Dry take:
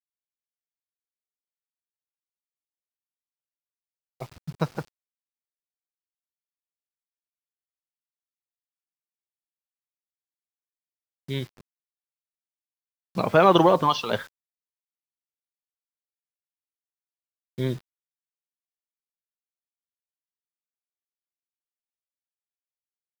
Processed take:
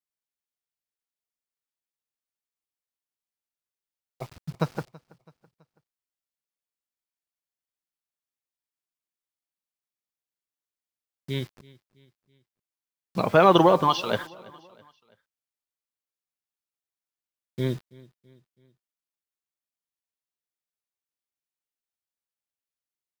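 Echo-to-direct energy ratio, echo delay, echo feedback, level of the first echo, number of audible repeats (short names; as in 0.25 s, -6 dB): -22.0 dB, 0.329 s, 48%, -23.0 dB, 2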